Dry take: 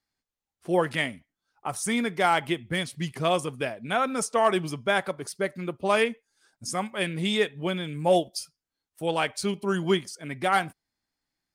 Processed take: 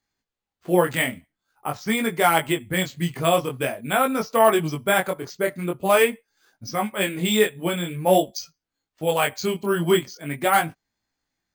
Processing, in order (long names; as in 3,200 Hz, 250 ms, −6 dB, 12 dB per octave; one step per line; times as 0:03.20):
bad sample-rate conversion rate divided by 4×, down filtered, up hold
chorus effect 0.46 Hz, delay 18 ms, depth 5.7 ms
level +7.5 dB